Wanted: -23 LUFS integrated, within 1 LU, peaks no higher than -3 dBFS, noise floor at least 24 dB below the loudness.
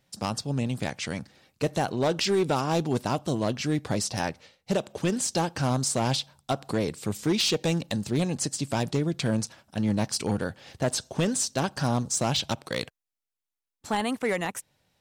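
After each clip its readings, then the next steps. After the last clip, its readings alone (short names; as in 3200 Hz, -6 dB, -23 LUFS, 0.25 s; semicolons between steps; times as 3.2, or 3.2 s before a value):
clipped 1.0%; flat tops at -18.5 dBFS; loudness -28.0 LUFS; peak -18.5 dBFS; loudness target -23.0 LUFS
-> clip repair -18.5 dBFS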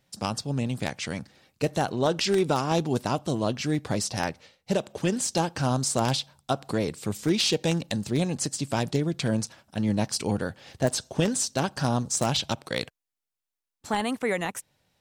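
clipped 0.0%; loudness -27.5 LUFS; peak -9.5 dBFS; loudness target -23.0 LUFS
-> gain +4.5 dB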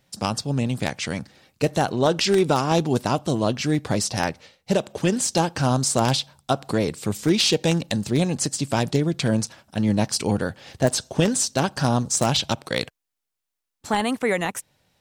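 loudness -23.0 LUFS; peak -5.0 dBFS; noise floor -83 dBFS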